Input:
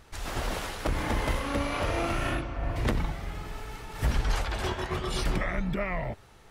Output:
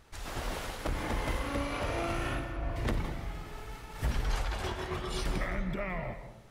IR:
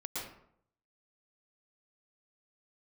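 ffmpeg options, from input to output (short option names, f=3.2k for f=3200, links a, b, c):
-filter_complex "[0:a]asplit=2[a][b];[1:a]atrim=start_sample=2205,highshelf=f=10k:g=9.5,adelay=53[c];[b][c]afir=irnorm=-1:irlink=0,volume=-10.5dB[d];[a][d]amix=inputs=2:normalize=0,volume=-5dB"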